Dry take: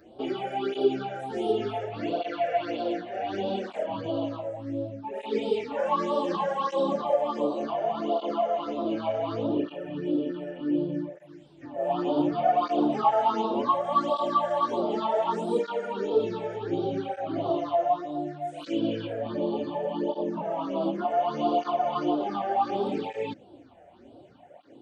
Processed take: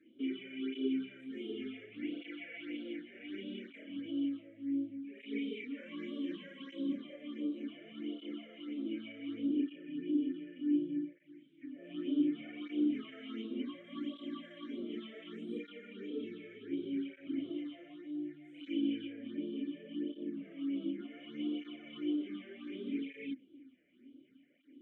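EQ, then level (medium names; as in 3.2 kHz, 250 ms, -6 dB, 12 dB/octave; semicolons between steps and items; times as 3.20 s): vowel filter i; bass shelf 280 Hz -6.5 dB; static phaser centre 2 kHz, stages 4; +5.5 dB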